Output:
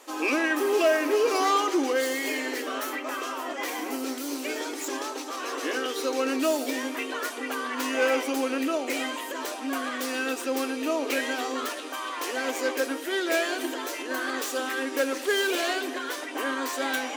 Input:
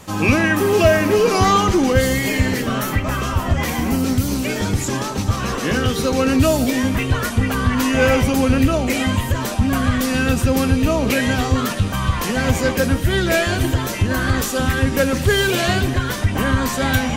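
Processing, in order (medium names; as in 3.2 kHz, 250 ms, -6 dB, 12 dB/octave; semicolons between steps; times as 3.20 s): tracing distortion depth 0.036 ms; brick-wall FIR high-pass 260 Hz; trim -7.5 dB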